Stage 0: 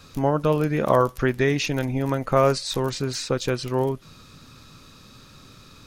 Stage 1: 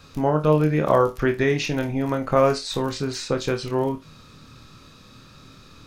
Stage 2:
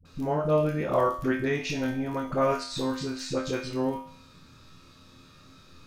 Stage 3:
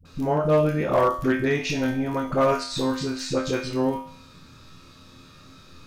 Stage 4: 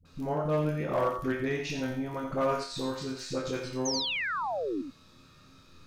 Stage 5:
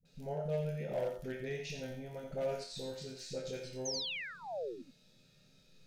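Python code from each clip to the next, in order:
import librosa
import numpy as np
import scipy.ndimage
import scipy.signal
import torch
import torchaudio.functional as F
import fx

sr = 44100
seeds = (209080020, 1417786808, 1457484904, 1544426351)

y1 = fx.peak_eq(x, sr, hz=14000.0, db=-6.0, octaves=1.6)
y1 = fx.room_flutter(y1, sr, wall_m=4.5, rt60_s=0.21)
y2 = fx.comb_fb(y1, sr, f0_hz=87.0, decay_s=0.58, harmonics='all', damping=0.0, mix_pct=80)
y2 = fx.dispersion(y2, sr, late='highs', ms=53.0, hz=440.0)
y2 = F.gain(torch.from_numpy(y2), 3.5).numpy()
y3 = np.clip(y2, -10.0 ** (-17.5 / 20.0), 10.0 ** (-17.5 / 20.0))
y3 = F.gain(torch.from_numpy(y3), 4.5).numpy()
y4 = fx.spec_paint(y3, sr, seeds[0], shape='fall', start_s=3.85, length_s=0.97, low_hz=250.0, high_hz=6600.0, level_db=-24.0)
y4 = y4 + 10.0 ** (-7.5 / 20.0) * np.pad(y4, (int(86 * sr / 1000.0), 0))[:len(y4)]
y4 = F.gain(torch.from_numpy(y4), -8.5).numpy()
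y5 = fx.fixed_phaser(y4, sr, hz=300.0, stages=6)
y5 = F.gain(torch.from_numpy(y5), -6.0).numpy()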